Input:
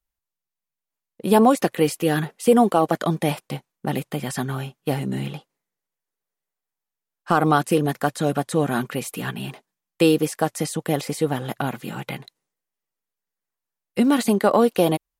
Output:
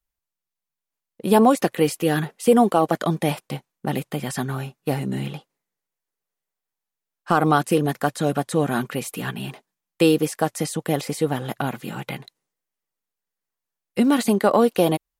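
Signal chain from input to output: 4.47–5.04 s: band-stop 3.2 kHz, Q 10

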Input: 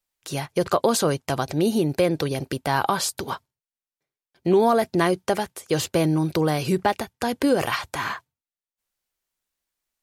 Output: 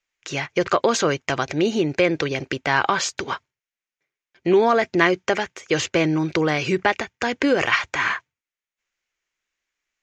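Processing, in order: FFT filter 220 Hz 0 dB, 340 Hz +5 dB, 830 Hz +2 dB, 2.2 kHz +14 dB, 4.3 kHz +2 dB, 6.8 kHz +7 dB, 9.8 kHz -26 dB; trim -2.5 dB

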